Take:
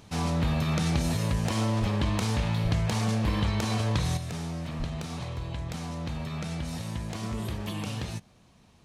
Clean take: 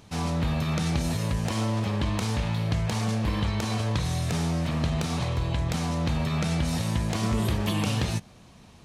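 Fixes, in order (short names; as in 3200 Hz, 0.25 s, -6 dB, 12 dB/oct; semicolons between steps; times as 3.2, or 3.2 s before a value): 1.8–1.92 HPF 140 Hz 24 dB/oct; 2.63–2.75 HPF 140 Hz 24 dB/oct; 4.78–4.9 HPF 140 Hz 24 dB/oct; gain 0 dB, from 4.17 s +7.5 dB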